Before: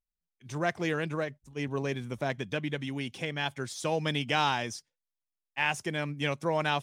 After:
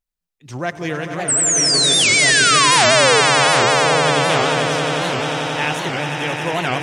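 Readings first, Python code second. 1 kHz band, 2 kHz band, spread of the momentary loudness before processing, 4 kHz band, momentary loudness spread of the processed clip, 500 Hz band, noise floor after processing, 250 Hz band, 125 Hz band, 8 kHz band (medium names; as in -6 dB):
+16.0 dB, +17.0 dB, 8 LU, +21.0 dB, 12 LU, +14.5 dB, -82 dBFS, +10.0 dB, +10.0 dB, +29.5 dB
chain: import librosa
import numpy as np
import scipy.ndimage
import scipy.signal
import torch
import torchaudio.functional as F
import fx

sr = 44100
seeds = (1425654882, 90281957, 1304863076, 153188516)

y = fx.spec_paint(x, sr, seeds[0], shape='fall', start_s=1.29, length_s=1.92, low_hz=420.0, high_hz=9700.0, level_db=-22.0)
y = fx.echo_swell(y, sr, ms=89, loudest=8, wet_db=-9.0)
y = fx.record_warp(y, sr, rpm=78.0, depth_cents=250.0)
y = F.gain(torch.from_numpy(y), 5.5).numpy()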